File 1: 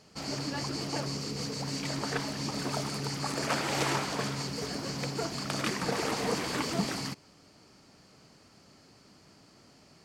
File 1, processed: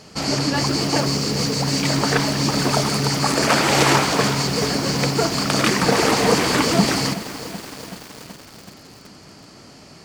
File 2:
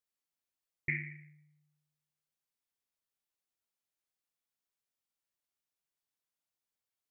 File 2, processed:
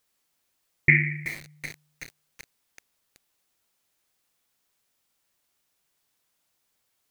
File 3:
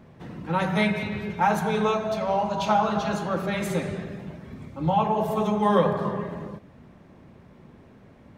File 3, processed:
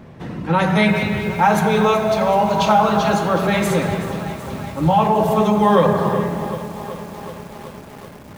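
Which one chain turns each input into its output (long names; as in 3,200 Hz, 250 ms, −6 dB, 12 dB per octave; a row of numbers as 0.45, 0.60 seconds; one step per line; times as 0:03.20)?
in parallel at +1.5 dB: brickwall limiter −18.5 dBFS
on the sum: feedback echo at a low word length 377 ms, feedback 80%, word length 6 bits, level −13.5 dB
normalise the peak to −3 dBFS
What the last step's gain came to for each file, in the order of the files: +7.0, +9.5, +2.5 decibels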